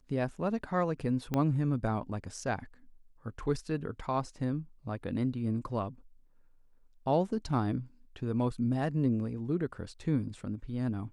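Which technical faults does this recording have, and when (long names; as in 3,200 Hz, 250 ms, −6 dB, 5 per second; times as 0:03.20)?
0:01.34: click −17 dBFS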